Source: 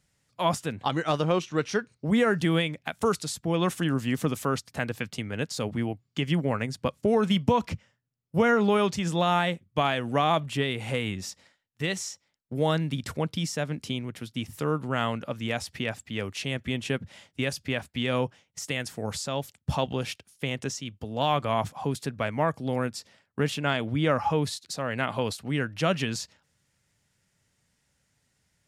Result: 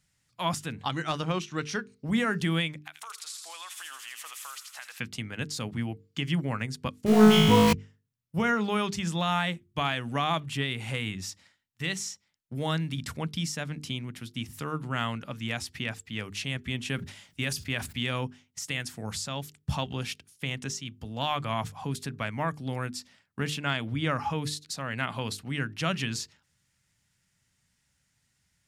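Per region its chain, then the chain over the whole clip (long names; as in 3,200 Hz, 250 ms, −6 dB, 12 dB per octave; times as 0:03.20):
0:02.83–0:05.00: high-pass filter 760 Hz 24 dB per octave + downward compressor 5 to 1, threshold −37 dBFS + delay with a high-pass on its return 82 ms, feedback 72%, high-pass 2,700 Hz, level −4 dB
0:07.06–0:07.73: converter with a step at zero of −28.5 dBFS + flutter between parallel walls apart 3.2 metres, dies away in 1.3 s
0:16.88–0:18.11: high-shelf EQ 9,000 Hz +6 dB + level that may fall only so fast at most 120 dB per second
whole clip: parametric band 510 Hz −9 dB 1.5 octaves; mains-hum notches 50/100/150/200/250/300/350/400/450 Hz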